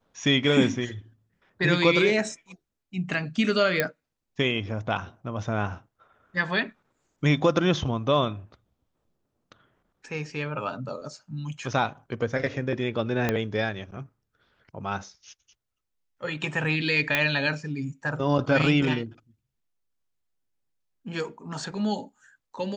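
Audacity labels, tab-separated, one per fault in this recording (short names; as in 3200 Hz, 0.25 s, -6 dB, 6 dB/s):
3.800000	3.800000	pop -8 dBFS
13.290000	13.290000	pop -10 dBFS
17.150000	17.150000	pop -8 dBFS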